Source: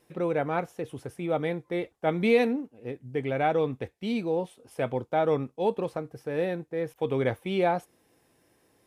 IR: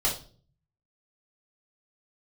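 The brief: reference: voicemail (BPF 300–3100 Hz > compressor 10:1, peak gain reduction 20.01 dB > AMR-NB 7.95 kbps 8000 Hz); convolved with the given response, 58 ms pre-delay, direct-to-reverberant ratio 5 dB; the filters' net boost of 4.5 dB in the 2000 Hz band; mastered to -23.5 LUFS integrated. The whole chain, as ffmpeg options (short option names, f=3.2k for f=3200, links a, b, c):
-filter_complex "[0:a]equalizer=f=2k:t=o:g=6.5,asplit=2[a][b];[1:a]atrim=start_sample=2205,adelay=58[c];[b][c]afir=irnorm=-1:irlink=0,volume=-14.5dB[d];[a][d]amix=inputs=2:normalize=0,highpass=300,lowpass=3.1k,acompressor=threshold=-36dB:ratio=10,volume=17.5dB" -ar 8000 -c:a libopencore_amrnb -b:a 7950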